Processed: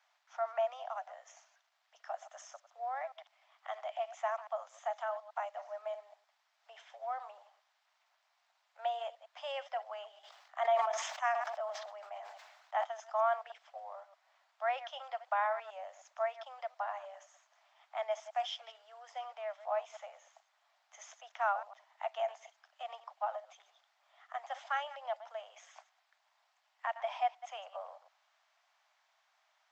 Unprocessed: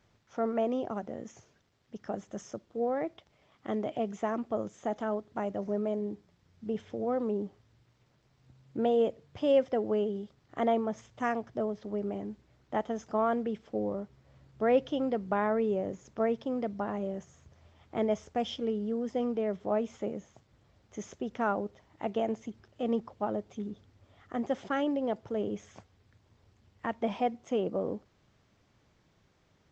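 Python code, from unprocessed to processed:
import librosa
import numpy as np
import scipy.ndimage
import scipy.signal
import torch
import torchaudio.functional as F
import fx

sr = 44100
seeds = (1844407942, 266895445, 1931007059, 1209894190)

y = fx.reverse_delay(x, sr, ms=104, wet_db=-14.0)
y = scipy.signal.sosfilt(scipy.signal.butter(12, 650.0, 'highpass', fs=sr, output='sos'), y)
y = fx.high_shelf(y, sr, hz=5400.0, db=-5.0)
y = fx.sustainer(y, sr, db_per_s=44.0, at=(10.23, 12.83), fade=0.02)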